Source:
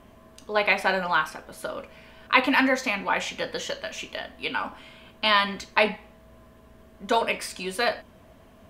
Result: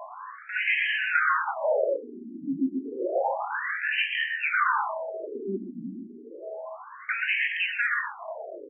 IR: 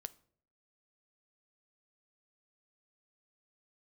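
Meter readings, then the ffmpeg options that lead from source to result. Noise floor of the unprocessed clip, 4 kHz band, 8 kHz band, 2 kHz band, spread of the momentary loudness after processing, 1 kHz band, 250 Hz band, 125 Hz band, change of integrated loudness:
−53 dBFS, −6.5 dB, below −40 dB, +0.5 dB, 16 LU, −3.0 dB, −2.5 dB, can't be measured, −1.5 dB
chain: -filter_complex "[0:a]lowpass=3100,lowshelf=frequency=320:gain=5,acrossover=split=440|1900[link_01][link_02][link_03];[link_01]acompressor=threshold=-40dB:ratio=6[link_04];[link_04][link_02][link_03]amix=inputs=3:normalize=0,asplit=2[link_05][link_06];[link_06]highpass=frequency=720:poles=1,volume=30dB,asoftclip=type=tanh:threshold=-2dB[link_07];[link_05][link_07]amix=inputs=2:normalize=0,lowpass=frequency=1200:poles=1,volume=-6dB,asoftclip=type=tanh:threshold=-18.5dB,aeval=exprs='0.133*(cos(1*acos(clip(val(0)/0.133,-1,1)))-cos(1*PI/2))+0.0188*(cos(2*acos(clip(val(0)/0.133,-1,1)))-cos(2*PI/2))+0.00668*(cos(7*acos(clip(val(0)/0.133,-1,1)))-cos(7*PI/2))':channel_layout=same,asplit=2[link_08][link_09];[link_09]adelay=26,volume=-12.5dB[link_10];[link_08][link_10]amix=inputs=2:normalize=0,asplit=2[link_11][link_12];[1:a]atrim=start_sample=2205,lowpass=2000,adelay=122[link_13];[link_12][link_13]afir=irnorm=-1:irlink=0,volume=2dB[link_14];[link_11][link_14]amix=inputs=2:normalize=0,afftfilt=real='re*between(b*sr/1024,240*pow(2300/240,0.5+0.5*sin(2*PI*0.3*pts/sr))/1.41,240*pow(2300/240,0.5+0.5*sin(2*PI*0.3*pts/sr))*1.41)':imag='im*between(b*sr/1024,240*pow(2300/240,0.5+0.5*sin(2*PI*0.3*pts/sr))/1.41,240*pow(2300/240,0.5+0.5*sin(2*PI*0.3*pts/sr))*1.41)':win_size=1024:overlap=0.75"

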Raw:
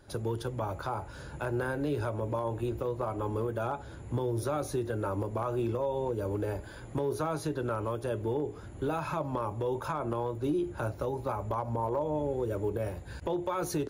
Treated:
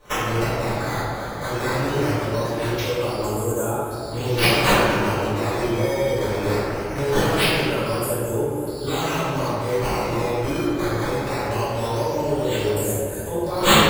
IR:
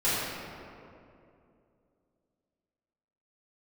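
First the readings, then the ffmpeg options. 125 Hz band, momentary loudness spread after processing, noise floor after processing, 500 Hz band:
+9.5 dB, 7 LU, −29 dBFS, +9.5 dB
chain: -filter_complex "[0:a]aexciter=amount=15.5:drive=8.4:freq=8300,acrusher=samples=9:mix=1:aa=0.000001:lfo=1:lforange=14.4:lforate=0.21[link_01];[1:a]atrim=start_sample=2205,asetrate=48510,aresample=44100[link_02];[link_01][link_02]afir=irnorm=-1:irlink=0,volume=-5.5dB"

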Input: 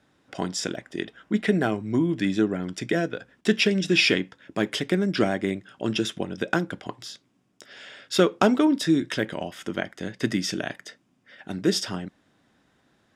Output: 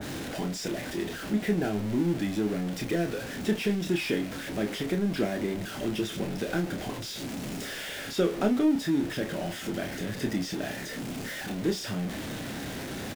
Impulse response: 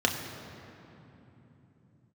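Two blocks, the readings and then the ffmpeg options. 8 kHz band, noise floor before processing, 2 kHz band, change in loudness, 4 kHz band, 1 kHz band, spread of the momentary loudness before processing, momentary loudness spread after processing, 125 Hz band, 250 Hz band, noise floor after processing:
−3.5 dB, −67 dBFS, −6.5 dB, −5.0 dB, −7.0 dB, −6.0 dB, 15 LU, 8 LU, −2.0 dB, −3.5 dB, −38 dBFS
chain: -filter_complex "[0:a]aeval=exprs='val(0)+0.5*0.0841*sgn(val(0))':channel_layout=same,equalizer=frequency=1100:width=1.5:gain=-8,acrossover=split=1900[link_01][link_02];[link_02]asoftclip=type=tanh:threshold=-25.5dB[link_03];[link_01][link_03]amix=inputs=2:normalize=0,asplit=2[link_04][link_05];[link_05]adelay=29,volume=-6dB[link_06];[link_04][link_06]amix=inputs=2:normalize=0,adynamicequalizer=threshold=0.02:dfrequency=1700:dqfactor=0.7:tfrequency=1700:tqfactor=0.7:attack=5:release=100:ratio=0.375:range=2:mode=cutabove:tftype=highshelf,volume=-7.5dB"

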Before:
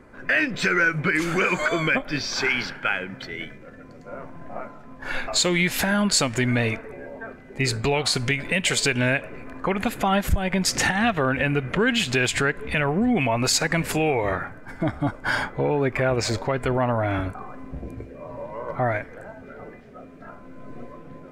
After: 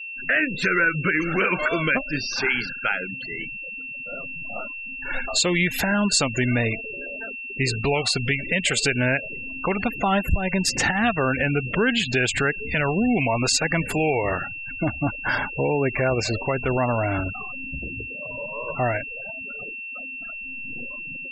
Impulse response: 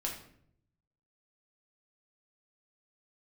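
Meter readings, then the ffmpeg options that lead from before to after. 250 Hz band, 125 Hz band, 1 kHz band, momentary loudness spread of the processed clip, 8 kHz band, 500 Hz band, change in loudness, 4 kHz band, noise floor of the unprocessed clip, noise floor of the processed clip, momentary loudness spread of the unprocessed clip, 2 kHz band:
0.0 dB, 0.0 dB, −0.5 dB, 11 LU, −1.0 dB, 0.0 dB, −1.0 dB, −0.5 dB, −44 dBFS, −35 dBFS, 18 LU, +1.0 dB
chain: -af "aeval=exprs='val(0)+0.0251*sin(2*PI*2700*n/s)':channel_layout=same,afftfilt=real='re*gte(hypot(re,im),0.0447)':imag='im*gte(hypot(re,im),0.0447)':win_size=1024:overlap=0.75"

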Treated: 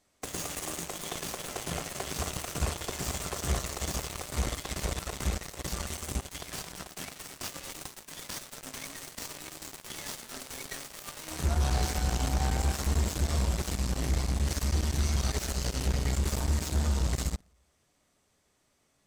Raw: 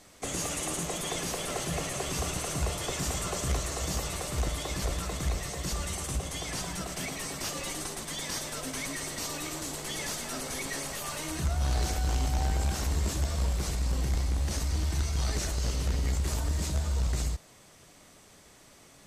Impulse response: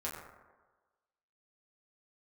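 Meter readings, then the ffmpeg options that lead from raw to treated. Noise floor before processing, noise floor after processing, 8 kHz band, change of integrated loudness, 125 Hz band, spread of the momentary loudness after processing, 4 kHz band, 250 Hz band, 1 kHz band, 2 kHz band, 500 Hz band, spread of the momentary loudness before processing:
−56 dBFS, −72 dBFS, −2.5 dB, −1.0 dB, 0.0 dB, 11 LU, −2.0 dB, 0.0 dB, −1.0 dB, −2.0 dB, −2.0 dB, 5 LU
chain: -filter_complex "[0:a]asplit=2[link_01][link_02];[1:a]atrim=start_sample=2205[link_03];[link_02][link_03]afir=irnorm=-1:irlink=0,volume=-10.5dB[link_04];[link_01][link_04]amix=inputs=2:normalize=0,aeval=exprs='0.158*(cos(1*acos(clip(val(0)/0.158,-1,1)))-cos(1*PI/2))+0.0251*(cos(7*acos(clip(val(0)/0.158,-1,1)))-cos(7*PI/2))':channel_layout=same,alimiter=limit=-22dB:level=0:latency=1:release=61,volume=1.5dB"

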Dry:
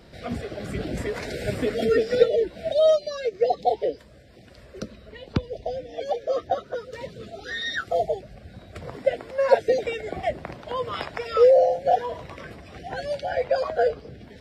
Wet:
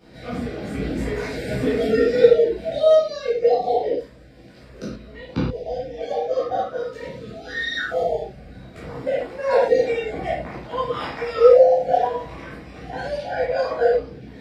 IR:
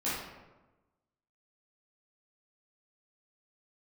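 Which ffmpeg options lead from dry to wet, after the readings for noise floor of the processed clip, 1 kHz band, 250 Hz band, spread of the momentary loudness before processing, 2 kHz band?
−45 dBFS, +2.5 dB, +5.5 dB, 19 LU, +3.5 dB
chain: -filter_complex "[1:a]atrim=start_sample=2205,atrim=end_sample=6174[link_01];[0:a][link_01]afir=irnorm=-1:irlink=0,volume=-3.5dB"

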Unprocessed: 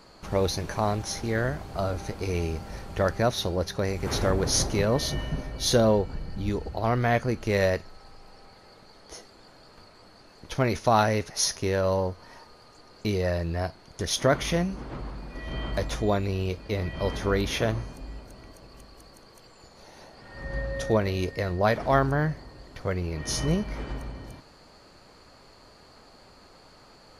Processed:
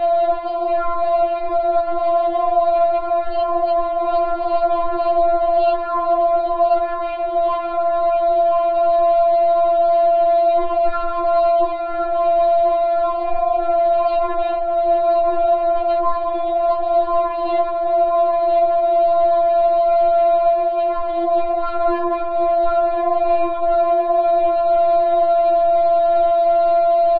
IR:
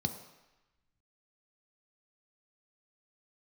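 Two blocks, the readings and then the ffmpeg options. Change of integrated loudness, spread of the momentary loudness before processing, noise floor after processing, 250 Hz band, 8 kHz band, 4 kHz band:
+10.0 dB, 15 LU, −22 dBFS, +0.5 dB, below −40 dB, can't be measured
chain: -filter_complex "[0:a]aeval=exprs='val(0)+0.5*0.0211*sgn(val(0))':channel_layout=same,lowshelf=frequency=230:gain=-8,aeval=exprs='val(0)+0.0126*(sin(2*PI*60*n/s)+sin(2*PI*2*60*n/s)/2+sin(2*PI*3*60*n/s)/3+sin(2*PI*4*60*n/s)/4+sin(2*PI*5*60*n/s)/5)':channel_layout=same,highpass=41,asplit=2[link_01][link_02];[link_02]adelay=1032,lowpass=frequency=2800:poles=1,volume=-8.5dB,asplit=2[link_03][link_04];[link_04]adelay=1032,lowpass=frequency=2800:poles=1,volume=0.49,asplit=2[link_05][link_06];[link_06]adelay=1032,lowpass=frequency=2800:poles=1,volume=0.49,asplit=2[link_07][link_08];[link_08]adelay=1032,lowpass=frequency=2800:poles=1,volume=0.49,asplit=2[link_09][link_10];[link_10]adelay=1032,lowpass=frequency=2800:poles=1,volume=0.49,asplit=2[link_11][link_12];[link_12]adelay=1032,lowpass=frequency=2800:poles=1,volume=0.49[link_13];[link_01][link_03][link_05][link_07][link_09][link_11][link_13]amix=inputs=7:normalize=0,aresample=8000,aeval=exprs='clip(val(0),-1,0.0282)':channel_layout=same,aresample=44100,tiltshelf=frequency=1100:gain=6[link_14];[1:a]atrim=start_sample=2205,asetrate=33516,aresample=44100[link_15];[link_14][link_15]afir=irnorm=-1:irlink=0,asplit=2[link_16][link_17];[link_17]acontrast=39,volume=-1dB[link_18];[link_16][link_18]amix=inputs=2:normalize=0,aeval=exprs='val(0)*sin(2*PI*620*n/s)':channel_layout=same,acrossover=split=260|2600[link_19][link_20][link_21];[link_19]acompressor=threshold=-23dB:ratio=4[link_22];[link_20]acompressor=threshold=-15dB:ratio=4[link_23];[link_21]acompressor=threshold=-44dB:ratio=4[link_24];[link_22][link_23][link_24]amix=inputs=3:normalize=0,afftfilt=real='re*4*eq(mod(b,16),0)':imag='im*4*eq(mod(b,16),0)':win_size=2048:overlap=0.75"

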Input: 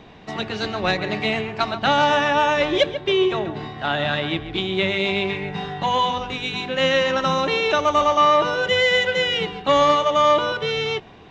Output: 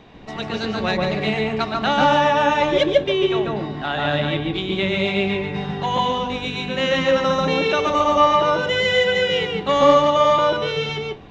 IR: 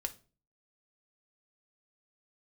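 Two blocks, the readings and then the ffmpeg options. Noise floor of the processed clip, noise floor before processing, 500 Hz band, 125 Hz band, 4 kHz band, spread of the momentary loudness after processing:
−31 dBFS, −44 dBFS, +2.0 dB, +3.5 dB, −0.5 dB, 10 LU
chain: -filter_complex "[0:a]asplit=2[link_01][link_02];[link_02]tiltshelf=frequency=760:gain=5.5[link_03];[1:a]atrim=start_sample=2205,atrim=end_sample=3087,adelay=142[link_04];[link_03][link_04]afir=irnorm=-1:irlink=0,volume=0.5dB[link_05];[link_01][link_05]amix=inputs=2:normalize=0,volume=-2dB"

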